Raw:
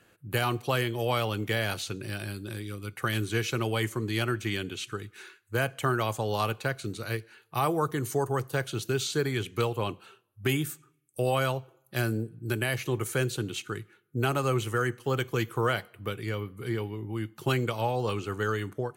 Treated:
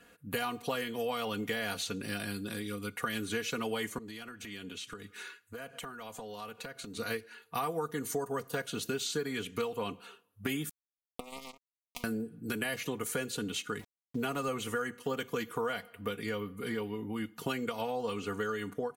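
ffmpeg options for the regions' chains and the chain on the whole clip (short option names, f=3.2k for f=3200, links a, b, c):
-filter_complex "[0:a]asettb=1/sr,asplit=3[a][b][c];[a]atrim=end=3.984[d];[b]atrim=start=3.98:end=6.97,asetpts=PTS-STARTPTS,afade=t=in:d=0.004:c=qsin,afade=t=out:st=2.986:d=0.004:c=qsin,highpass=53,acompressor=threshold=-40dB:ratio=16:attack=3.2:release=140:knee=1:detection=peak[e];[c]atrim=start=6.966[f];[d][e]acrossfade=d=0.004:c1=hsin:c2=qsin[g];[g][f]acrossfade=d=0.004:c1=qsin:c2=hsin,asettb=1/sr,asplit=3[h][i][j];[h]atrim=end=10.694[k];[i]atrim=start=10.69:end=12.04,asetpts=PTS-STARTPTS,afade=t=in:d=0.004:c=qsin,afade=t=out:st=1.346:d=0.004:c=qsin,acompressor=threshold=-30dB:ratio=5:attack=3.2:release=140:knee=1:detection=peak,acrusher=bits=3:mix=0:aa=0.5,asuperstop=centerf=1600:order=8:qfactor=2[l];[j]atrim=start=12.036[m];[k][l]acrossfade=d=0.004:c1=hsin:c2=qsin[n];[n][m]acrossfade=d=0.004:c1=qsin:c2=hsin,asettb=1/sr,asplit=3[o][p][q];[o]atrim=end=13.794[r];[p]atrim=start=13.79:end=14.48,asetpts=PTS-STARTPTS,afade=t=in:d=0.004:c=qsin,afade=t=out:st=0.686:d=0.004:c=qsin,lowshelf=f=91:g=4.5,aeval=exprs='val(0)*gte(abs(val(0)),0.00447)':c=same[s];[q]atrim=start=14.476[t];[r][s]acrossfade=d=0.004:c1=hsin:c2=qsin[u];[u][t]acrossfade=d=0.004:c1=qsin:c2=hsin,aecho=1:1:4.2:0.82,acompressor=threshold=-32dB:ratio=4"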